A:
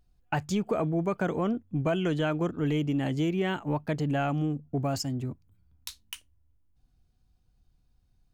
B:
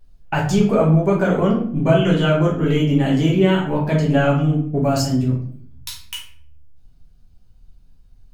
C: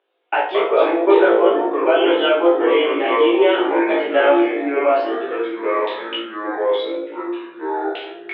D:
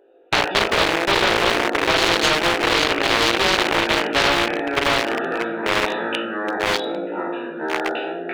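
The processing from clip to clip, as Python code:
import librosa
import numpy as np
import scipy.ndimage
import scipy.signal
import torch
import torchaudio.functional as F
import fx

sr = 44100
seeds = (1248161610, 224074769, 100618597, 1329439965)

y1 = fx.room_shoebox(x, sr, seeds[0], volume_m3=74.0, walls='mixed', distance_m=1.2)
y1 = y1 * librosa.db_to_amplitude(5.0)
y2 = fx.echo_pitch(y1, sr, ms=113, semitones=-5, count=2, db_per_echo=-3.0)
y2 = scipy.signal.sosfilt(scipy.signal.cheby1(5, 1.0, [330.0, 3500.0], 'bandpass', fs=sr, output='sos'), y2)
y2 = fx.room_flutter(y2, sr, wall_m=3.0, rt60_s=0.23)
y2 = y2 * librosa.db_to_amplitude(2.5)
y3 = fx.wiener(y2, sr, points=41)
y3 = fx.spectral_comp(y3, sr, ratio=4.0)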